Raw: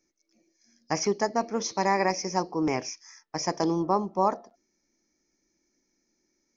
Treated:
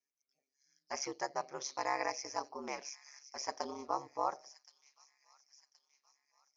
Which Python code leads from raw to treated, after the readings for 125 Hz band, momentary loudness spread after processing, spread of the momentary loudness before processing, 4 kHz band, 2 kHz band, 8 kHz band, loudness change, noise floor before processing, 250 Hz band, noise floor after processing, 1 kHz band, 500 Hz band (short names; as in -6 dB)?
-25.5 dB, 12 LU, 10 LU, -9.0 dB, -9.0 dB, n/a, -12.0 dB, -77 dBFS, -20.0 dB, under -85 dBFS, -10.0 dB, -13.5 dB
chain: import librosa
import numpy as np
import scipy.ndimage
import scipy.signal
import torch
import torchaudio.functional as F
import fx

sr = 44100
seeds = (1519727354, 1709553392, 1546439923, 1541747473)

y = fx.noise_reduce_blind(x, sr, reduce_db=9)
y = scipy.signal.sosfilt(scipy.signal.butter(2, 590.0, 'highpass', fs=sr, output='sos'), y)
y = y * np.sin(2.0 * np.pi * 69.0 * np.arange(len(y)) / sr)
y = fx.echo_wet_highpass(y, sr, ms=1072, feedback_pct=46, hz=3200.0, wet_db=-13.0)
y = y * librosa.db_to_amplitude(-6.0)